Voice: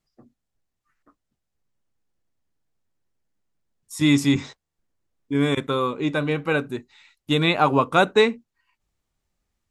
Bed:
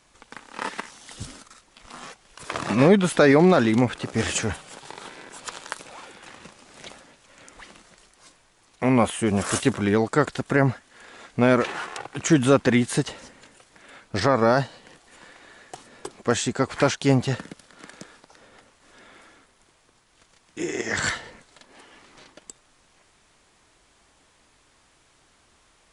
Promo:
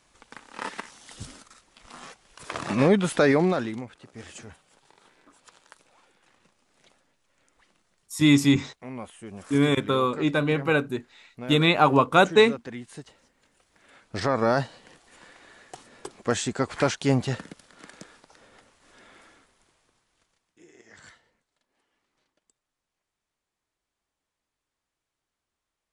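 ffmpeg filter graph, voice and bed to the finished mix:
-filter_complex "[0:a]adelay=4200,volume=0dB[a];[1:a]volume=12dB,afade=t=out:st=3.27:d=0.57:silence=0.177828,afade=t=in:st=13.33:d=1.23:silence=0.16788,afade=t=out:st=19.3:d=1.3:silence=0.0749894[b];[a][b]amix=inputs=2:normalize=0"

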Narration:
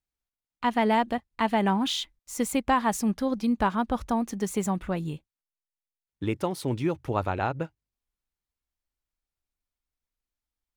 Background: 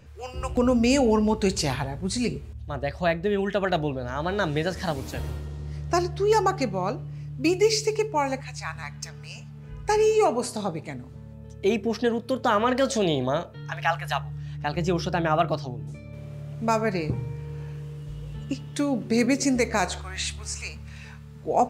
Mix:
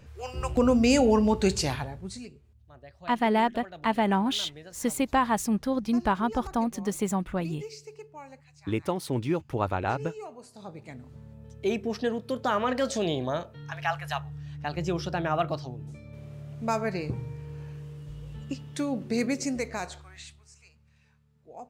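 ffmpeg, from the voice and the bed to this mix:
-filter_complex "[0:a]adelay=2450,volume=-0.5dB[a];[1:a]volume=15.5dB,afade=t=out:st=1.48:d=0.81:silence=0.1,afade=t=in:st=10.52:d=0.63:silence=0.158489,afade=t=out:st=19.04:d=1.42:silence=0.125893[b];[a][b]amix=inputs=2:normalize=0"

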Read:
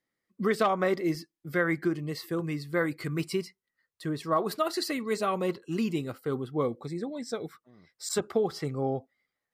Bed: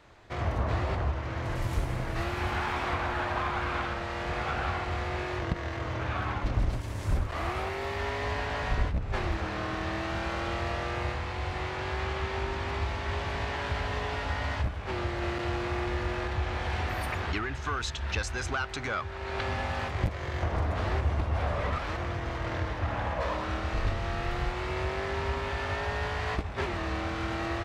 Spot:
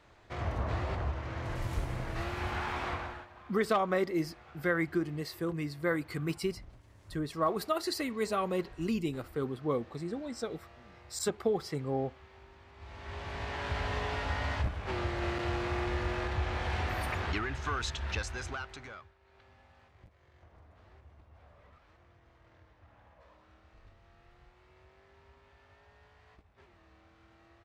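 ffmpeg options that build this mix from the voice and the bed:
-filter_complex "[0:a]adelay=3100,volume=-3dB[a];[1:a]volume=17dB,afade=t=out:st=2.87:d=0.4:silence=0.112202,afade=t=in:st=12.76:d=1.11:silence=0.0841395,afade=t=out:st=17.92:d=1.23:silence=0.0421697[b];[a][b]amix=inputs=2:normalize=0"

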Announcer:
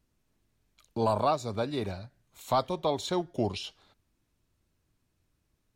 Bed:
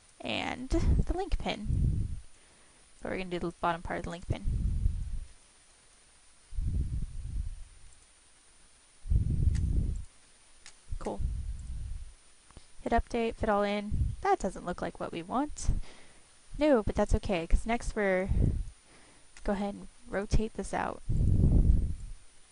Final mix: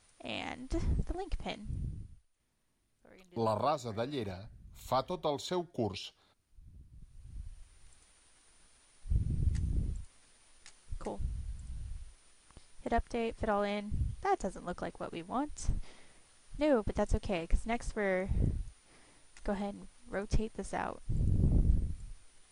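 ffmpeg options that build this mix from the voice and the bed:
-filter_complex "[0:a]adelay=2400,volume=-5dB[a];[1:a]volume=13.5dB,afade=t=out:st=1.47:d=0.78:silence=0.133352,afade=t=in:st=6.91:d=1.09:silence=0.105925[b];[a][b]amix=inputs=2:normalize=0"

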